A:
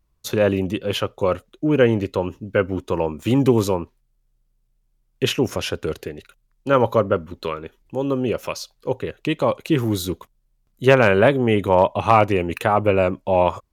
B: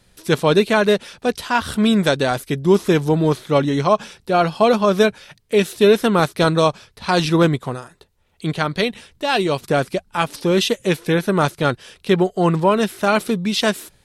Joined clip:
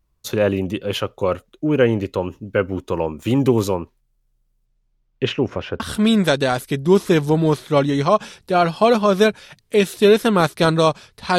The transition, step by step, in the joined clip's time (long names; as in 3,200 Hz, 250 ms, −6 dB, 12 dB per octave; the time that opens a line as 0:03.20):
A
0:04.65–0:05.80: low-pass filter 7,900 Hz → 1,700 Hz
0:05.80: continue with B from 0:01.59